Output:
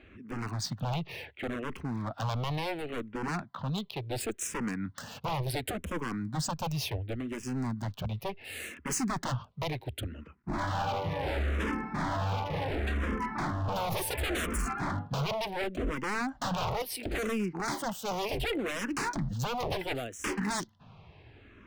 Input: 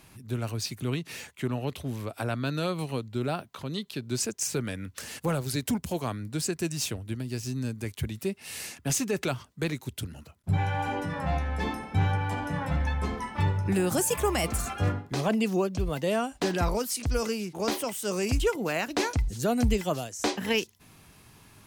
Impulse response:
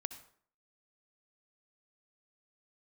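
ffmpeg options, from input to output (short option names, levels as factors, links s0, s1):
-filter_complex "[0:a]highshelf=f=3400:g=-6,acrossover=split=3800[s0][s1];[s1]aeval=exprs='sgn(val(0))*max(abs(val(0))-0.00316,0)':c=same[s2];[s0][s2]amix=inputs=2:normalize=0,acontrast=74,aeval=exprs='0.0794*(abs(mod(val(0)/0.0794+3,4)-2)-1)':c=same,asplit=2[s3][s4];[s4]afreqshift=-0.7[s5];[s3][s5]amix=inputs=2:normalize=1,volume=0.794"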